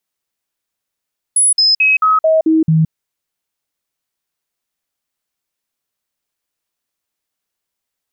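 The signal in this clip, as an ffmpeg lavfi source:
-f lavfi -i "aevalsrc='0.398*clip(min(mod(t,0.22),0.17-mod(t,0.22))/0.005,0,1)*sin(2*PI*10200*pow(2,-floor(t/0.22)/1)*mod(t,0.22))':d=1.54:s=44100"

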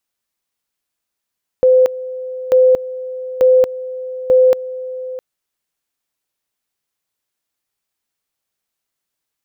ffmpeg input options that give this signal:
-f lavfi -i "aevalsrc='pow(10,(-6.5-16.5*gte(mod(t,0.89),0.23))/20)*sin(2*PI*512*t)':d=3.56:s=44100"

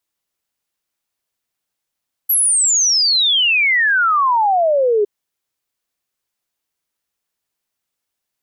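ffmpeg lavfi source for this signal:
-f lavfi -i "aevalsrc='0.266*clip(min(t,2.76-t)/0.01,0,1)*sin(2*PI*12000*2.76/log(400/12000)*(exp(log(400/12000)*t/2.76)-1))':d=2.76:s=44100"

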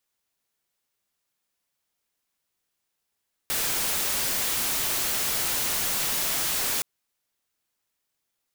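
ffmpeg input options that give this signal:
-f lavfi -i "anoisesrc=c=white:a=0.0819:d=3.32:r=44100:seed=1"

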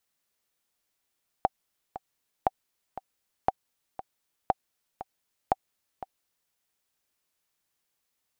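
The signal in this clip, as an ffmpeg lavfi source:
-f lavfi -i "aevalsrc='pow(10,(-8.5-14.5*gte(mod(t,2*60/118),60/118))/20)*sin(2*PI*767*mod(t,60/118))*exp(-6.91*mod(t,60/118)/0.03)':d=5.08:s=44100"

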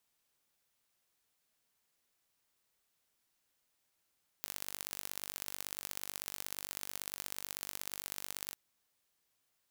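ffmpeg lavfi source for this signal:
-f lavfi -i "aevalsrc='0.266*eq(mod(n,902),0)*(0.5+0.5*eq(mod(n,2706),0))':d=4.11:s=44100"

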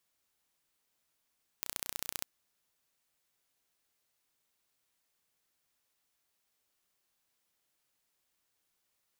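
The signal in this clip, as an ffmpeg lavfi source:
-f lavfi -i "aevalsrc='0.422*eq(mod(n,1455),0)*(0.5+0.5*eq(mod(n,2910),0))':d=0.61:s=44100"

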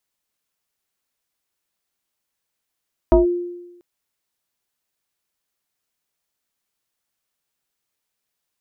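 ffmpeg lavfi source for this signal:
-f lavfi -i "aevalsrc='0.447*pow(10,-3*t/1.03)*sin(2*PI*351*t+1.4*clip(1-t/0.14,0,1)*sin(2*PI*0.85*351*t))':d=0.69:s=44100"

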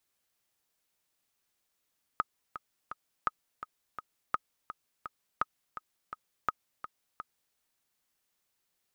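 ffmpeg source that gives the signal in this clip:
-f lavfi -i "aevalsrc='pow(10,(-14-12*gte(mod(t,3*60/168),60/168))/20)*sin(2*PI*1260*mod(t,60/168))*exp(-6.91*mod(t,60/168)/0.03)':d=5.35:s=44100"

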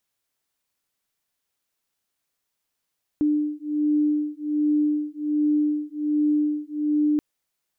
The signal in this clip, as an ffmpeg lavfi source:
-f lavfi -i "aevalsrc='0.0708*(sin(2*PI*298*t)+sin(2*PI*299.3*t))':d=3.98:s=44100"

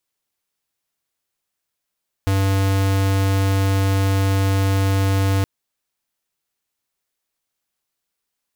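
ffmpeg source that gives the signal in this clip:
-f lavfi -i "aevalsrc='0.133*(2*lt(mod(97.2*t,1),0.5)-1)':d=3.17:s=44100"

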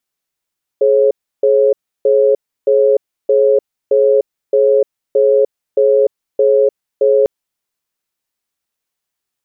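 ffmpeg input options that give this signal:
-f lavfi -i "aevalsrc='0.299*(sin(2*PI*422*t)+sin(2*PI*545*t))*clip(min(mod(t,0.62),0.3-mod(t,0.62))/0.005,0,1)':d=6.45:s=44100"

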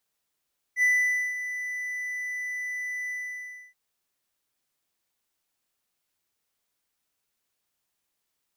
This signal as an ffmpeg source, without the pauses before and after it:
-f lavfi -i "aevalsrc='0.158*(1-4*abs(mod(1990*t+0.25,1)-0.5))':d=2.977:s=44100,afade=t=in:d=0.066,afade=t=out:st=0.066:d=0.513:silence=0.251,afade=t=out:st=2.34:d=0.637"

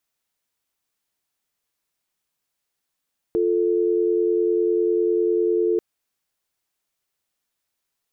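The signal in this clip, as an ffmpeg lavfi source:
-f lavfi -i "aevalsrc='0.1*(sin(2*PI*350*t)+sin(2*PI*440*t))':d=2.44:s=44100"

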